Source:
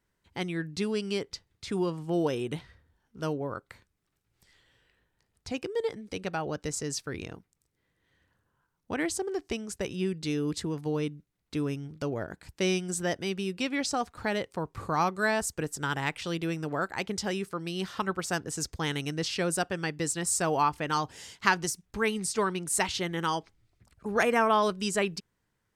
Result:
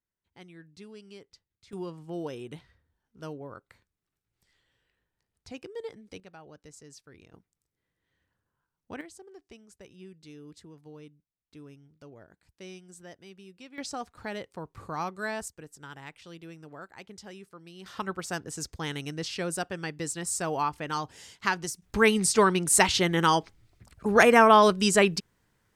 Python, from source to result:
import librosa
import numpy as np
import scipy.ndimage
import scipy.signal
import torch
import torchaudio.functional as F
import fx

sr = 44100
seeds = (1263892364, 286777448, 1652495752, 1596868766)

y = fx.gain(x, sr, db=fx.steps((0.0, -17.0), (1.73, -8.0), (6.2, -17.0), (7.33, -7.5), (9.01, -17.5), (13.78, -6.5), (15.48, -14.0), (17.86, -3.0), (21.82, 7.0)))